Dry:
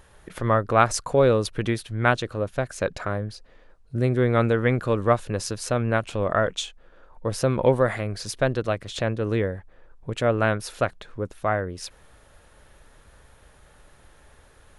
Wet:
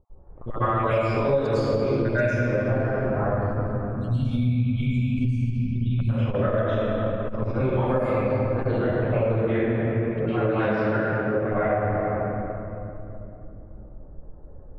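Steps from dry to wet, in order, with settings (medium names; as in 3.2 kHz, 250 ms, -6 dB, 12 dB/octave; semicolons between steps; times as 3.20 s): random holes in the spectrogram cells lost 46%; level-controlled noise filter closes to 460 Hz, open at -18 dBFS; 3.75–6.00 s: spectral selection erased 260–2200 Hz; 9.29–11.40 s: high-pass 130 Hz 12 dB/octave; level-controlled noise filter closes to 1.3 kHz, open at -21 dBFS; reverberation RT60 3.0 s, pre-delay 98 ms, DRR -19 dB; compression 8:1, threshold -11 dBFS, peak gain reduction 17 dB; transformer saturation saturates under 75 Hz; trim -8 dB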